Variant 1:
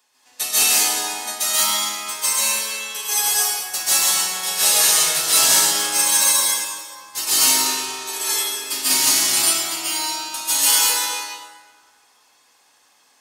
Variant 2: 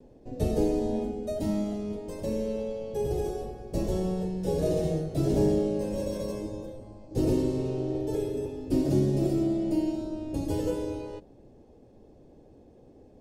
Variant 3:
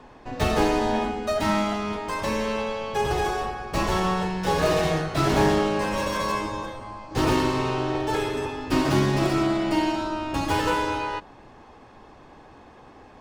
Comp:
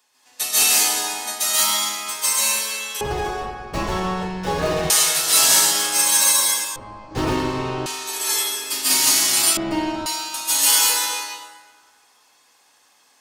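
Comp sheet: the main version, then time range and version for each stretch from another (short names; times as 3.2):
1
3.01–4.9 from 3
6.76–7.86 from 3
9.57–10.06 from 3
not used: 2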